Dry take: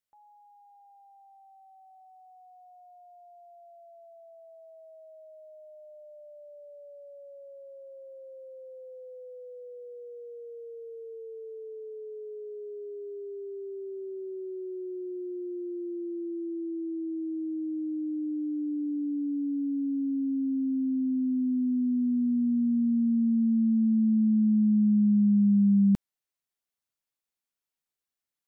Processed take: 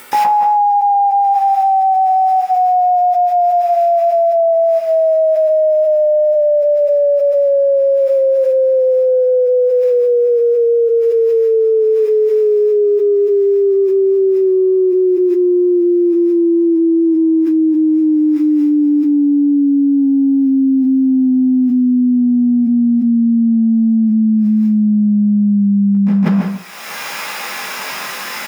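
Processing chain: bass shelf 490 Hz -10.5 dB; upward compressor, threshold -53 dBFS; peak limiter -32.5 dBFS, peak gain reduction 6.5 dB; chorus 0.12 Hz, delay 15.5 ms, depth 7 ms; feedback delay 160 ms, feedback 15%, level -6 dB; reverberation RT60 0.60 s, pre-delay 114 ms, DRR -14 dB; level flattener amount 100%

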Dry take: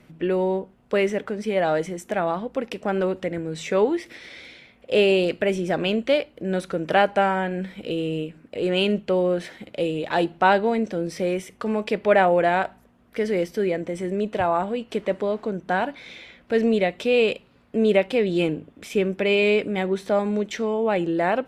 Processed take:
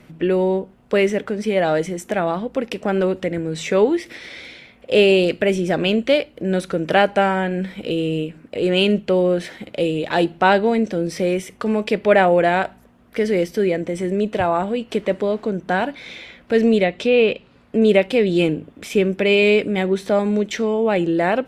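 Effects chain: 16.83–17.82 s: low-pass that closes with the level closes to 3 kHz, closed at -17.5 dBFS; dynamic bell 970 Hz, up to -4 dB, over -35 dBFS, Q 0.9; trim +5.5 dB

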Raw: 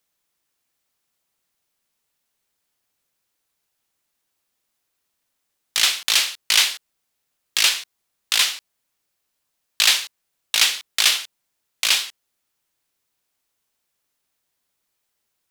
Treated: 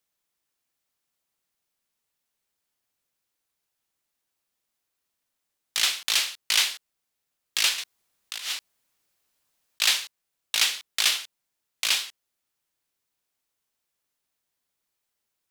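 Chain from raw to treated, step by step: 7.78–9.82 s: compressor with a negative ratio -28 dBFS, ratio -1; trim -5.5 dB

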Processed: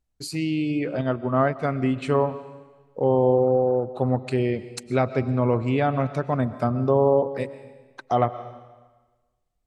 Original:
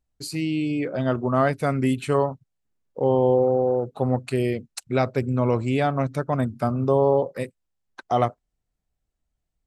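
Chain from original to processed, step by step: on a send at -14 dB: reverberation RT60 1.3 s, pre-delay 80 ms; on the sum: low-pass that closes with the level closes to 2.3 kHz, closed at -16 dBFS; 1.01–1.96 s: upward expansion 1.5:1, over -28 dBFS

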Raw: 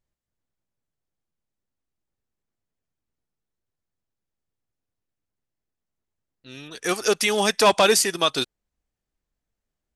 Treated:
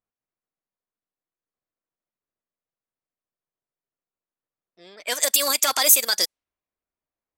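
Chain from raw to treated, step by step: peak limiter -12.5 dBFS, peak gain reduction 7 dB; RIAA curve recording; speed mistake 33 rpm record played at 45 rpm; band-stop 860 Hz, Q 12; level-controlled noise filter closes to 1.5 kHz, open at -16.5 dBFS

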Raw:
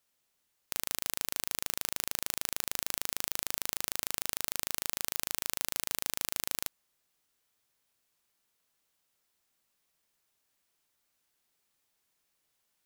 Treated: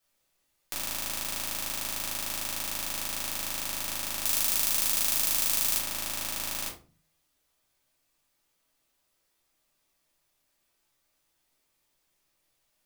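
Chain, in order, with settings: 4.22–5.78 s: treble shelf 3.8 kHz +8.5 dB; reverberation RT60 0.35 s, pre-delay 3 ms, DRR -6.5 dB; trim -3.5 dB

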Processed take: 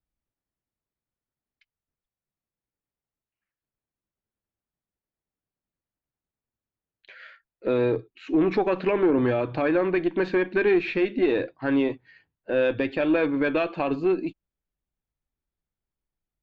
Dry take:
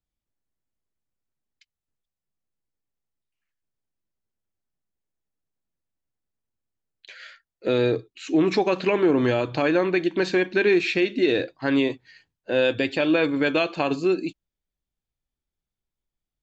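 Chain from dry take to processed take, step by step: single-diode clipper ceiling -11.5 dBFS; low-pass 2.2 kHz 12 dB/octave

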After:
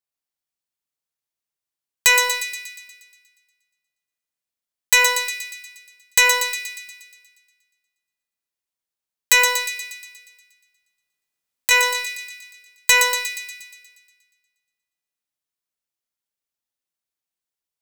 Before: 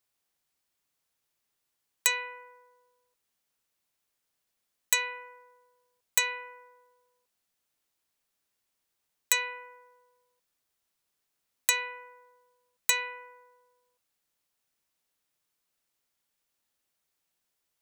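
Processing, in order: waveshaping leveller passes 5; 9.75–11.71 s: compressor with a negative ratio -16 dBFS, ratio -0.5; feedback echo behind a high-pass 119 ms, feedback 59%, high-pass 3 kHz, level -4 dB

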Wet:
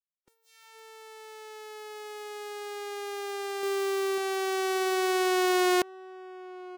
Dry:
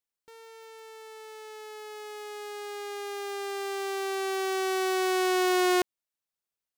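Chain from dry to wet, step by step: 3.63–4.18 s: waveshaping leveller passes 3; echo from a far wall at 190 m, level -17 dB; spectral noise reduction 27 dB

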